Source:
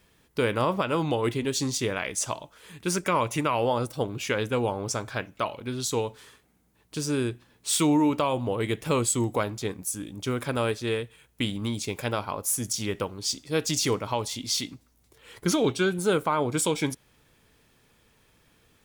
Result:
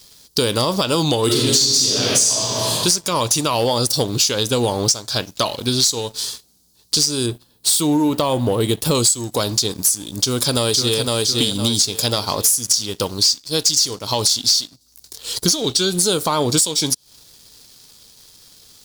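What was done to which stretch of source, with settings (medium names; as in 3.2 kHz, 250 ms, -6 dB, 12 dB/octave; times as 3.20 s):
1.25–2.76 s: reverb throw, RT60 1.9 s, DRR -6 dB
7.26–8.95 s: peaking EQ 5.7 kHz -13 dB 1.4 oct
10.18–10.99 s: echo throw 510 ms, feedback 35%, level -5 dB
whole clip: resonant high shelf 3.1 kHz +14 dB, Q 3; compression 8:1, threshold -26 dBFS; waveshaping leveller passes 2; trim +5 dB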